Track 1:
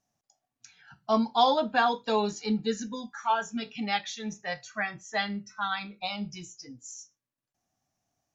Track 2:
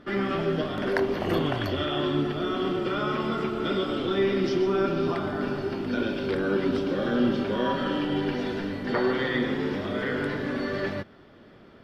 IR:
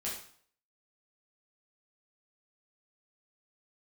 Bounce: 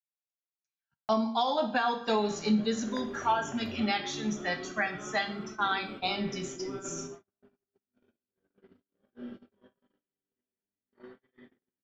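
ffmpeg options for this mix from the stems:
-filter_complex "[0:a]volume=1,asplit=3[s0][s1][s2];[s1]volume=0.501[s3];[1:a]equalizer=f=5300:t=o:w=1.1:g=-6,adelay=2000,volume=0.15,asplit=2[s4][s5];[s5]volume=0.447[s6];[s2]apad=whole_len=610214[s7];[s4][s7]sidechaingate=range=0.0224:threshold=0.00398:ratio=16:detection=peak[s8];[2:a]atrim=start_sample=2205[s9];[s3][s6]amix=inputs=2:normalize=0[s10];[s10][s9]afir=irnorm=-1:irlink=0[s11];[s0][s8][s11]amix=inputs=3:normalize=0,agate=range=0.00501:threshold=0.00708:ratio=16:detection=peak,alimiter=limit=0.133:level=0:latency=1:release=437"

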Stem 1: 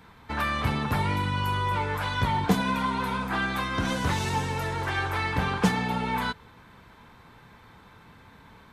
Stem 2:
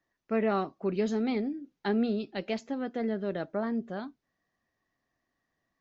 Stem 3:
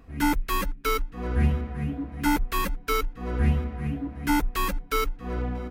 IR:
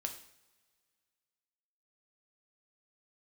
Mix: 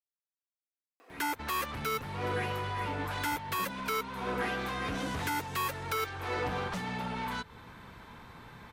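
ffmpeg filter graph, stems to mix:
-filter_complex "[0:a]acompressor=threshold=0.0178:ratio=2.5,aeval=exprs='0.075*sin(PI/2*2.24*val(0)/0.075)':c=same,adelay=1100,volume=0.355[s0];[2:a]highpass=f=400:w=0.5412,highpass=f=400:w=1.3066,adelay=1000,volume=1.26[s1];[s0][s1]amix=inputs=2:normalize=0,alimiter=limit=0.075:level=0:latency=1:release=384"

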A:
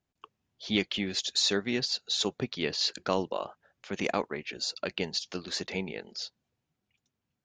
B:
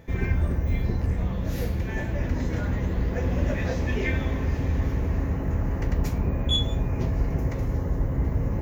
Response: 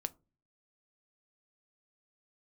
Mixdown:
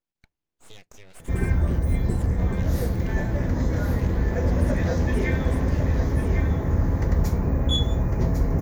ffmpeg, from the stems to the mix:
-filter_complex "[0:a]acompressor=threshold=0.02:ratio=12,aeval=exprs='abs(val(0))':c=same,volume=0.355,asplit=2[s0][s1];[s1]volume=0.266[s2];[1:a]equalizer=f=2700:w=2.2:g=-9.5,adelay=1200,volume=1,asplit=3[s3][s4][s5];[s4]volume=0.398[s6];[s5]volume=0.631[s7];[2:a]atrim=start_sample=2205[s8];[s2][s6]amix=inputs=2:normalize=0[s9];[s9][s8]afir=irnorm=-1:irlink=0[s10];[s7]aecho=0:1:1102:1[s11];[s0][s3][s10][s11]amix=inputs=4:normalize=0"

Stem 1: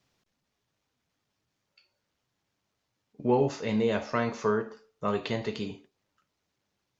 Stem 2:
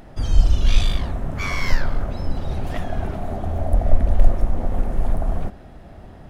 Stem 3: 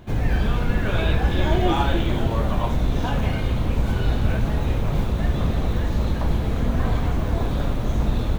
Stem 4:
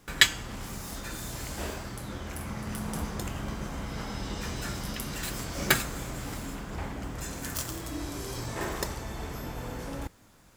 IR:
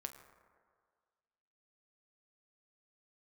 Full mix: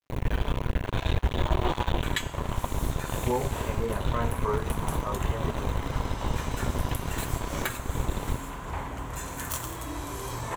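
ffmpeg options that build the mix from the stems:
-filter_complex "[0:a]lowpass=2200,flanger=delay=15.5:depth=6.1:speed=0.57,volume=0.422[s0];[2:a]equalizer=f=1100:w=0.85:g=-9,acrusher=bits=2:mix=0:aa=0.5,volume=0.237[s1];[3:a]adelay=1950,volume=0.531[s2];[s0][s1][s2]amix=inputs=3:normalize=0,acontrast=84,alimiter=limit=0.168:level=0:latency=1:release=396,volume=1,equalizer=f=200:t=o:w=0.33:g=-8,equalizer=f=315:t=o:w=0.33:g=-4,equalizer=f=1000:t=o:w=0.33:g=9,equalizer=f=5000:t=o:w=0.33:g=-10,acrusher=bits=11:mix=0:aa=0.000001"

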